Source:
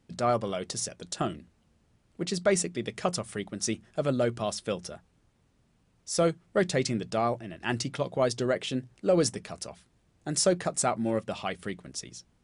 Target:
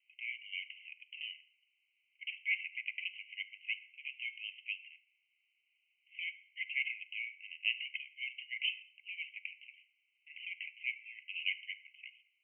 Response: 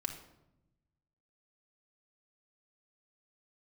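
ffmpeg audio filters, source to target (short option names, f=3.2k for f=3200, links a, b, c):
-filter_complex "[0:a]asuperpass=centerf=2500:order=20:qfactor=2.5,asplit=2[a][b];[1:a]atrim=start_sample=2205[c];[b][c]afir=irnorm=-1:irlink=0,volume=-4dB[d];[a][d]amix=inputs=2:normalize=0,volume=3dB"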